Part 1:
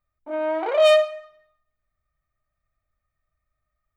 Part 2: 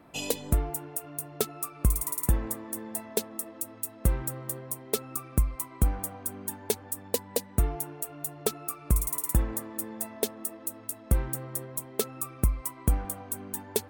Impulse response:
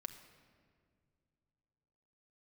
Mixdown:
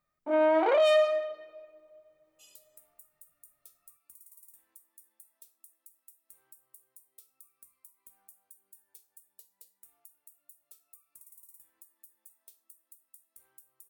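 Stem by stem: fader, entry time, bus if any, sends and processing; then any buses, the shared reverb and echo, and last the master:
-0.5 dB, 0.00 s, send -6 dB, resonant low shelf 110 Hz -13.5 dB, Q 1.5
-8.0 dB, 2.25 s, no send, differentiator; resonator bank C2 minor, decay 0.25 s; compressor 10:1, threshold -43 dBFS, peak gain reduction 11 dB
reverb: on, pre-delay 5 ms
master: limiter -16.5 dBFS, peak gain reduction 11.5 dB

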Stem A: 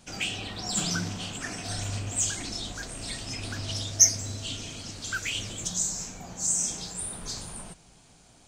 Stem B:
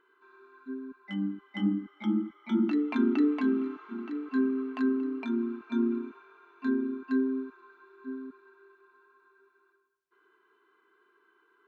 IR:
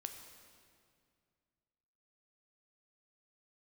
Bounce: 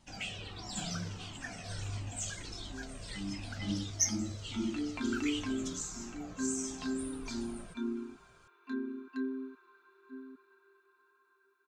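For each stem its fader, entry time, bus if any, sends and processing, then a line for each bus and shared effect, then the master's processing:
-3.0 dB, 0.00 s, no send, high shelf 6400 Hz -9.5 dB; cascading flanger falling 1.5 Hz
-9.0 dB, 2.05 s, no send, high shelf 2800 Hz +11 dB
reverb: off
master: dry

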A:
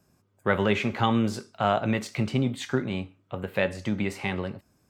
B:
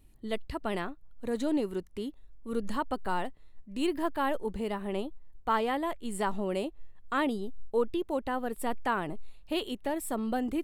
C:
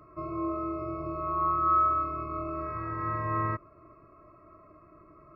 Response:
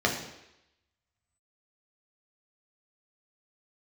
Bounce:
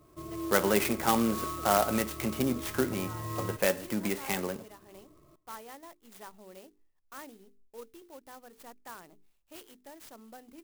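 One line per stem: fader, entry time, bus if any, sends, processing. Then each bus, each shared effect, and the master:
-1.0 dB, 0.05 s, no send, no echo send, HPF 220 Hz 12 dB/oct
-16.0 dB, 0.00 s, no send, no echo send, tilt +2 dB/oct; notches 50/100/150/200/250/300/350/400/450 Hz
-3.5 dB, 0.00 s, no send, echo send -22.5 dB, bell 1400 Hz -13.5 dB 0.56 oct; notch 630 Hz, Q 21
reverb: off
echo: feedback echo 0.304 s, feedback 58%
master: clock jitter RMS 0.066 ms

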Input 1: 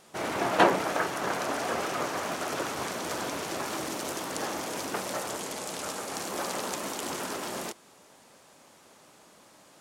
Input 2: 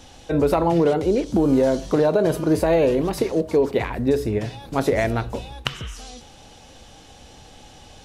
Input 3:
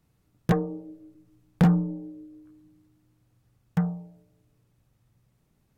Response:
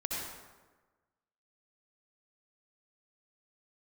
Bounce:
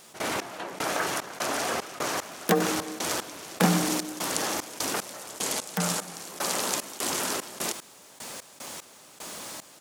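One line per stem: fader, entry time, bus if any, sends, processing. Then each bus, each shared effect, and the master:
-2.5 dB, 0.00 s, no send, requantised 12-bit, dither triangular; step gate ".x..xx.xx.x..x" 75 bpm -24 dB; fast leveller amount 50%
off
+1.0 dB, 2.00 s, send -9.5 dB, steep high-pass 200 Hz 48 dB/oct; high shelf 8500 Hz +10 dB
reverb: on, RT60 1.3 s, pre-delay 58 ms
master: high shelf 2500 Hz +8 dB

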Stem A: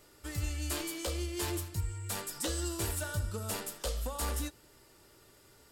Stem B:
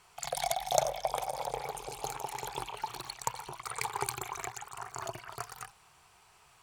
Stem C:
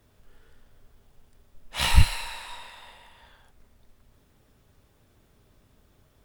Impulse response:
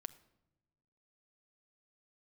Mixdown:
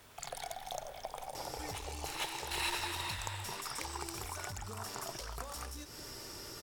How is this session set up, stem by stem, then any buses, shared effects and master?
-1.5 dB, 1.35 s, bus A, no send, no echo send, bell 5500 Hz +13 dB 0.3 oct; fast leveller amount 50%
-3.0 dB, 0.00 s, no bus, no send, no echo send, compressor, threshold -36 dBFS, peak gain reduction 15 dB
+1.0 dB, 0.00 s, bus A, no send, echo send -6.5 dB, negative-ratio compressor -33 dBFS, ratio -0.5; one-sided clip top -32 dBFS; low shelf 440 Hz -12 dB
bus A: 0.0 dB, one-sided clip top -33 dBFS; compressor 6:1, threshold -43 dBFS, peak gain reduction 15 dB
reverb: off
echo: feedback echo 0.455 s, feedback 33%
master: dry

